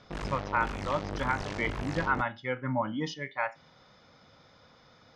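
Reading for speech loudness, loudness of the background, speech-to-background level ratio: −32.5 LKFS, −37.5 LKFS, 5.0 dB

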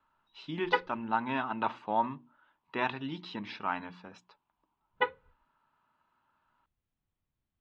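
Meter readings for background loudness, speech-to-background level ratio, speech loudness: −33.0 LKFS, −1.5 dB, −34.5 LKFS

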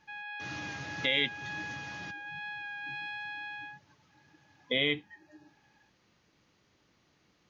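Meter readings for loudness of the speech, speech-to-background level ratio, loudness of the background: −33.0 LKFS, 7.0 dB, −40.0 LKFS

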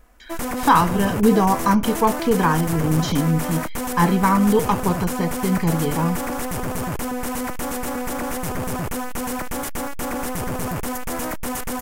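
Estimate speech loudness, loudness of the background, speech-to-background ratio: −20.0 LKFS, −27.0 LKFS, 7.0 dB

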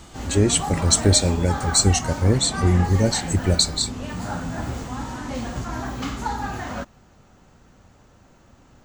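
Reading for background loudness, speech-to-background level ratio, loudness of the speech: −30.0 LKFS, 10.0 dB, −20.0 LKFS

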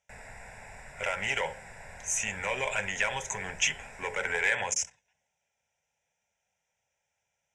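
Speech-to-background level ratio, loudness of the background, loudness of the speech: 17.0 dB, −47.5 LKFS, −30.5 LKFS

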